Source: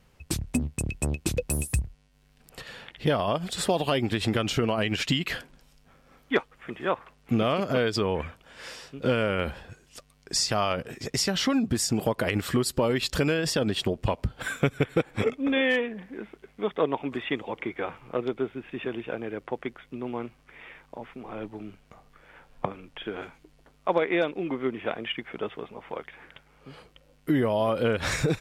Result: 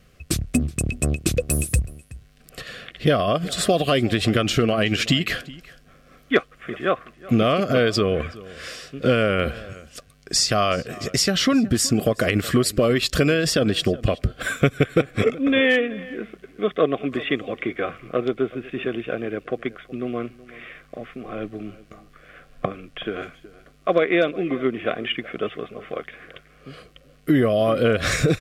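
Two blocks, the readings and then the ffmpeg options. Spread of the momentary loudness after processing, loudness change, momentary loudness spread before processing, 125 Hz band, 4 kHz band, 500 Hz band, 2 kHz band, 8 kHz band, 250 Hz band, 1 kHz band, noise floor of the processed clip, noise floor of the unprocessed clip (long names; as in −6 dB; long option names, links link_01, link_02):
16 LU, +6.0 dB, 16 LU, +6.0 dB, +6.0 dB, +6.0 dB, +6.0 dB, +6.0 dB, +6.0 dB, +4.0 dB, −54 dBFS, −62 dBFS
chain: -filter_complex "[0:a]asuperstop=centerf=900:order=8:qfactor=3.3,asplit=2[link_01][link_02];[link_02]adelay=373.2,volume=-19dB,highshelf=frequency=4000:gain=-8.4[link_03];[link_01][link_03]amix=inputs=2:normalize=0,volume=6dB"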